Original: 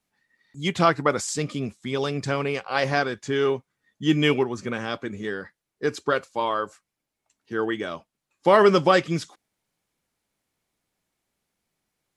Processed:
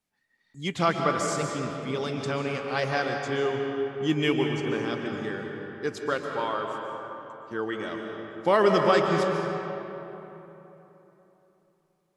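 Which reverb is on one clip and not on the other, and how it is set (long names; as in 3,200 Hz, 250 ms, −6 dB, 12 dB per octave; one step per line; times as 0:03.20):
comb and all-pass reverb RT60 3.5 s, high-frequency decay 0.55×, pre-delay 100 ms, DRR 2 dB
level −5 dB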